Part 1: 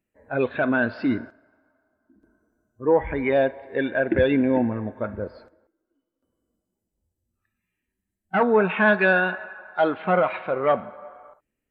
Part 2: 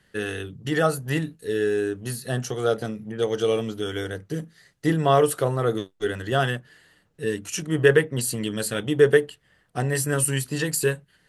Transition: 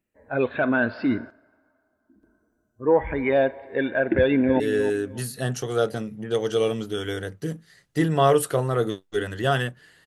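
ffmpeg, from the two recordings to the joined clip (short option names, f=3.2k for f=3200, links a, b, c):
-filter_complex "[0:a]apad=whole_dur=10.06,atrim=end=10.06,atrim=end=4.602[a];[1:a]atrim=start=1.478:end=6.94[b];[a][b]acrossfade=d=0.004:c1=hsin:c2=hsin,asplit=2[c][d];[d]afade=t=in:st=4.16:d=0.01,afade=t=out:st=4.6:d=0.01,aecho=0:1:300|600|900:0.281838|0.0704596|0.0176149[e];[c][e]amix=inputs=2:normalize=0"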